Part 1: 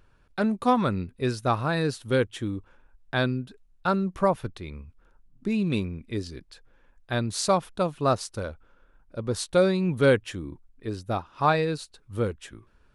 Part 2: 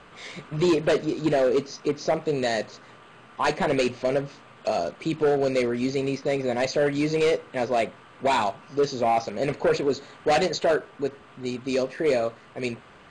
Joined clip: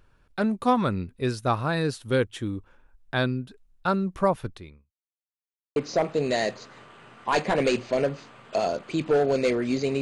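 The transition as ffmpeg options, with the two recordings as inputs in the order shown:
-filter_complex "[0:a]apad=whole_dur=10.01,atrim=end=10.01,asplit=2[a][b];[a]atrim=end=4.94,asetpts=PTS-STARTPTS,afade=t=out:st=4.53:d=0.41:c=qua[c];[b]atrim=start=4.94:end=5.76,asetpts=PTS-STARTPTS,volume=0[d];[1:a]atrim=start=1.88:end=6.13,asetpts=PTS-STARTPTS,afade=t=in:d=0.004:c=hsin[e];[c][d][e]concat=n=3:v=0:a=1"

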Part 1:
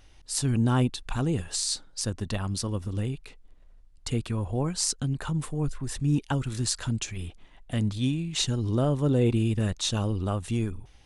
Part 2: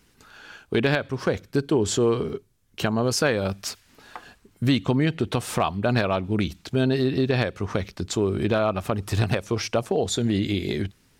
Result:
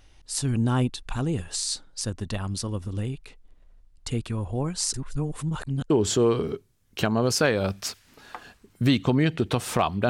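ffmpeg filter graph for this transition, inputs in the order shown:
-filter_complex "[0:a]apad=whole_dur=10.09,atrim=end=10.09,asplit=2[a][b];[a]atrim=end=4.942[c];[b]atrim=start=4.938:end=5.902,asetpts=PTS-STARTPTS,areverse[d];[1:a]atrim=start=1.708:end=5.9[e];[c][d]acrossfade=d=0.004:c1=hsin:c2=hsin[f];[f][e]acrossfade=d=0.004:c1=hsin:c2=hsin"

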